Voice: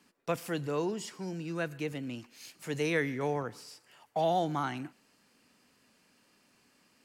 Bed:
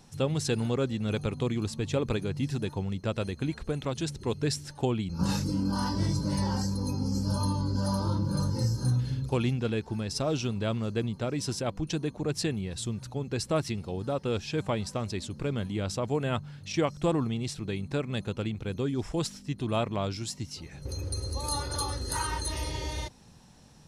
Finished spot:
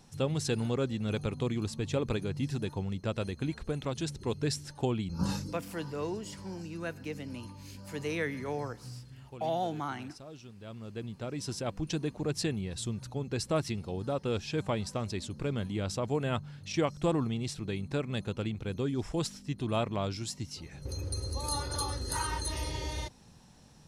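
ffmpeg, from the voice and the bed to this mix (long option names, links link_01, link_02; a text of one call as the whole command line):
ffmpeg -i stem1.wav -i stem2.wav -filter_complex "[0:a]adelay=5250,volume=-3.5dB[link_01];[1:a]volume=14.5dB,afade=type=out:start_time=5.22:duration=0.38:silence=0.149624,afade=type=in:start_time=10.58:duration=1.33:silence=0.141254[link_02];[link_01][link_02]amix=inputs=2:normalize=0" out.wav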